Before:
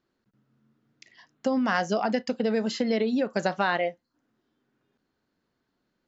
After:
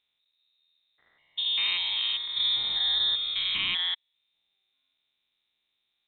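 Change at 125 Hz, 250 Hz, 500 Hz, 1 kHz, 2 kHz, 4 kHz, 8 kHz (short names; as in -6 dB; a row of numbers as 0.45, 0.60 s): under -15 dB, under -30 dB, under -30 dB, -17.0 dB, -3.5 dB, +17.0 dB, n/a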